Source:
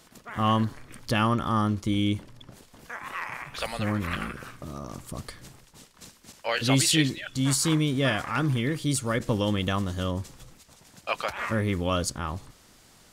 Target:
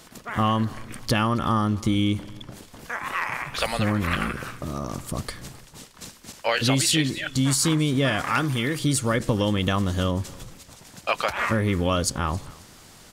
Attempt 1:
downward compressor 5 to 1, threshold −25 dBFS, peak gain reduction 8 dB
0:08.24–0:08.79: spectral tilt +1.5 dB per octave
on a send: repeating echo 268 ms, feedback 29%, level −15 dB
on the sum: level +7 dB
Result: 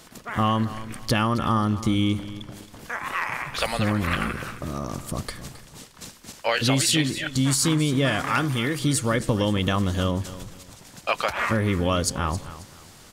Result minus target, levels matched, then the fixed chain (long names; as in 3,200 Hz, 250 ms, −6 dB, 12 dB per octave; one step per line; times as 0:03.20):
echo-to-direct +7.5 dB
downward compressor 5 to 1, threshold −25 dBFS, peak gain reduction 8 dB
0:08.24–0:08.79: spectral tilt +1.5 dB per octave
on a send: repeating echo 268 ms, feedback 29%, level −22.5 dB
on the sum: level +7 dB